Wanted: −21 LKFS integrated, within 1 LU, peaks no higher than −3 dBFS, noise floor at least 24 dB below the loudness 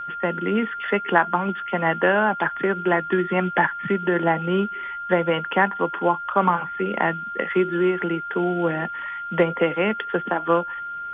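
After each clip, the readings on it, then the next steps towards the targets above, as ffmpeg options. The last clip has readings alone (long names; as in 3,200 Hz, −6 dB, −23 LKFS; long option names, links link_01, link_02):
interfering tone 1,400 Hz; level of the tone −29 dBFS; integrated loudness −22.5 LKFS; sample peak −2.0 dBFS; target loudness −21.0 LKFS
→ -af "bandreject=frequency=1400:width=30"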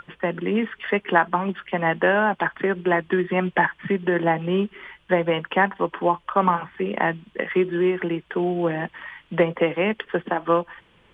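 interfering tone none found; integrated loudness −23.0 LKFS; sample peak −3.0 dBFS; target loudness −21.0 LKFS
→ -af "volume=2dB,alimiter=limit=-3dB:level=0:latency=1"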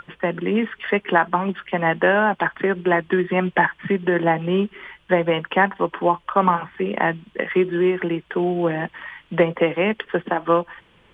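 integrated loudness −21.0 LKFS; sample peak −3.0 dBFS; background noise floor −57 dBFS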